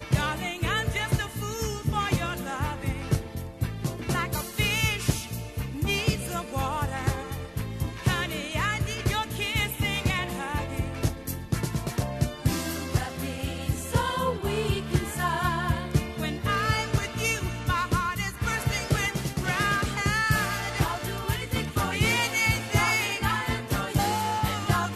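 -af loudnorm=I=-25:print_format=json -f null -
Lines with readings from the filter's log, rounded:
"input_i" : "-27.3",
"input_tp" : "-9.2",
"input_lra" : "4.2",
"input_thresh" : "-37.3",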